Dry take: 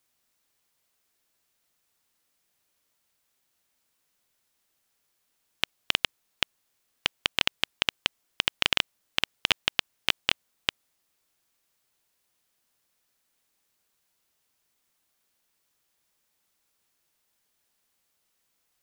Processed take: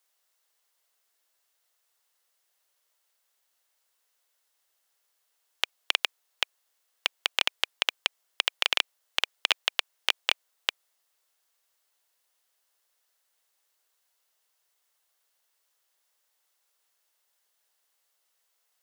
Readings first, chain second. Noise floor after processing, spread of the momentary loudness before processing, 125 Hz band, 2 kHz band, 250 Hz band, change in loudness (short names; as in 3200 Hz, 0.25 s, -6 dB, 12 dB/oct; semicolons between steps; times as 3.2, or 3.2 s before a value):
-76 dBFS, 7 LU, under -35 dB, -1.0 dB, under -10 dB, -0.5 dB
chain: HPF 450 Hz 24 dB/oct; notch 2400 Hz, Q 16